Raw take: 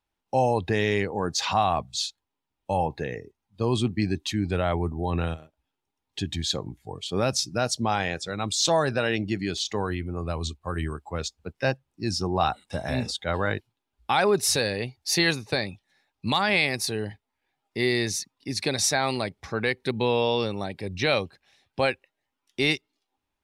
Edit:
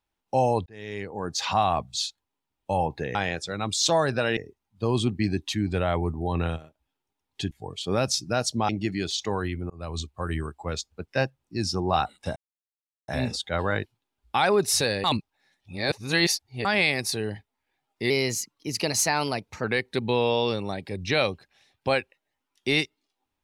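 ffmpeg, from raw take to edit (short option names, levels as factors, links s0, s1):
-filter_complex "[0:a]asplit=12[s0][s1][s2][s3][s4][s5][s6][s7][s8][s9][s10][s11];[s0]atrim=end=0.66,asetpts=PTS-STARTPTS,afade=t=out:st=0.656:d=0.004:c=hsin[s12];[s1]atrim=start=0.66:end=3.152,asetpts=PTS-STARTPTS,afade=t=in:d=0.92[s13];[s2]atrim=start=7.938:end=9.162[s14];[s3]atrim=start=3.148:end=6.292[s15];[s4]atrim=start=6.758:end=7.942[s16];[s5]atrim=start=9.158:end=10.17,asetpts=PTS-STARTPTS,afade=t=out:st=1.008:d=0.004:c=hsin[s17];[s6]atrim=start=10.17:end=12.83,asetpts=PTS-STARTPTS,afade=t=in:d=0.41:c=qsin,afade=t=out:st=2.656:d=0.004:c=hsin,apad=pad_dur=0.72[s18];[s7]atrim=start=12.83:end=14.792,asetpts=PTS-STARTPTS,afade=t=in:d=0.004:c=hsin[s19];[s8]atrim=start=14.788:end=16.402,asetpts=PTS-STARTPTS,areverse[s20];[s9]atrim=start=16.398:end=17.854[s21];[s10]atrim=start=17.85:end=19.56,asetpts=PTS-STARTPTS,asetrate=48951,aresample=44100[s22];[s11]atrim=start=19.556[s23];[s12][s13]concat=n=2:v=0:a=1[s24];[s24][s14]acrossfade=d=0.004:c1=hsin:c2=hsin[s25];[s25][s15]acrossfade=d=0.004:c1=hsin:c2=hsin[s26];[s26][s16]acrossfade=d=0.004:c1=hsin:c2=hsin[s27];[s17][s18][s19]concat=n=3:v=0:a=1[s28];[s27][s28]acrossfade=d=0.004:c1=hsin:c2=hsin[s29];[s29][s20]acrossfade=d=0.004:c1=hsin:c2=hsin[s30];[s30][s21]acrossfade=d=0.004:c1=hsin:c2=hsin[s31];[s31][s22]acrossfade=d=0.004:c1=hsin:c2=hsin[s32];[s32][s23]acrossfade=d=0.004:c1=hsin:c2=hsin"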